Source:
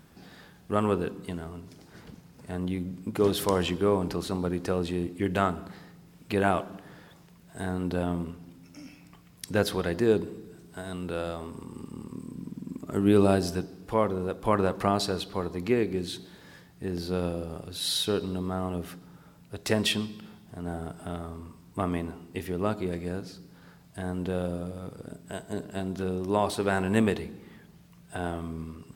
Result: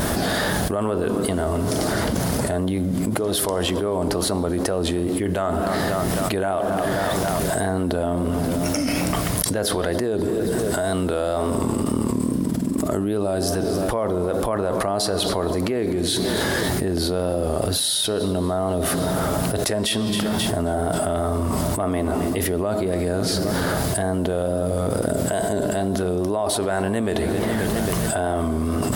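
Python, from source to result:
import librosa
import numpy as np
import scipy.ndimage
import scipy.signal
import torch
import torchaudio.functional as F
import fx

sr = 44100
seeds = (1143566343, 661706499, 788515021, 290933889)

y = fx.wow_flutter(x, sr, seeds[0], rate_hz=2.1, depth_cents=51.0)
y = fx.graphic_eq_31(y, sr, hz=(160, 630, 2500, 10000), db=(-9, 9, -6, 9))
y = fx.echo_feedback(y, sr, ms=268, feedback_pct=55, wet_db=-24.0)
y = fx.env_flatten(y, sr, amount_pct=100)
y = y * 10.0 ** (-5.0 / 20.0)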